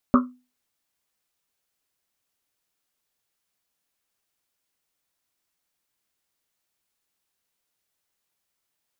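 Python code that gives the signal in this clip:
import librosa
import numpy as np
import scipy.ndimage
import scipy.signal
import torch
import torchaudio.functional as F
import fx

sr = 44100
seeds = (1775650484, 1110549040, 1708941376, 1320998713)

y = fx.risset_drum(sr, seeds[0], length_s=1.1, hz=250.0, decay_s=0.31, noise_hz=1200.0, noise_width_hz=310.0, noise_pct=35)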